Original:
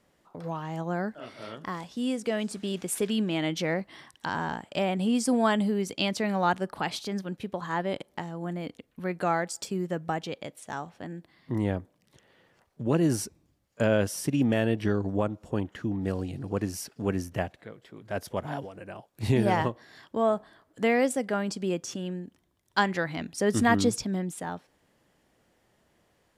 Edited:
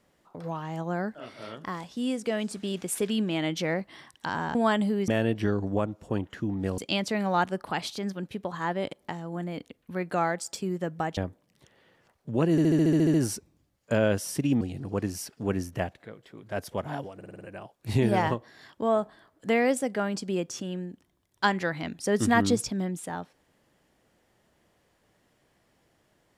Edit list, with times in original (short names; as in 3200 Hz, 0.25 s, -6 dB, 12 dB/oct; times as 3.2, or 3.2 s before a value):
4.55–5.34 cut
10.26–11.69 cut
13.03 stutter 0.07 s, 10 plays
14.5–16.2 move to 5.87
18.75 stutter 0.05 s, 6 plays